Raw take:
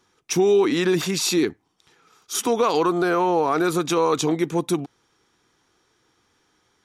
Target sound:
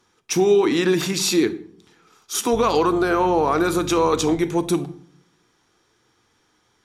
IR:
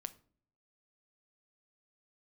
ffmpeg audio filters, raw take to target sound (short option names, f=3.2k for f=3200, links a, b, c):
-filter_complex "[0:a]asettb=1/sr,asplit=3[a][b][c];[a]atrim=end=2.534[d];[b]atrim=start=2.53:end=4.37,asetpts=PTS-STARTPTS,afade=t=in:d=0.004:c=qsin,afade=t=out:st=1.836:d=0.004:c=qsin,aeval=exprs='val(0)+0.0282*(sin(2*PI*50*n/s)+sin(2*PI*2*50*n/s)/2+sin(2*PI*3*50*n/s)/3+sin(2*PI*4*50*n/s)/4+sin(2*PI*5*50*n/s)/5)':c=same[e];[c]atrim=start=4.366[f];[d][e]acrossfade=d=0.004:c1=hsin:c2=qsin[g];[g][f]acrossfade=d=0.004:c1=qsin:c2=hsin[h];[1:a]atrim=start_sample=2205,asetrate=31311,aresample=44100[i];[h][i]afir=irnorm=-1:irlink=0,volume=3dB"